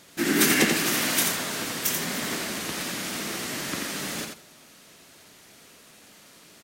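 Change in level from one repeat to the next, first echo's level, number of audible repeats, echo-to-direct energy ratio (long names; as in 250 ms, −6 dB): −16.0 dB, −5.0 dB, 2, −5.0 dB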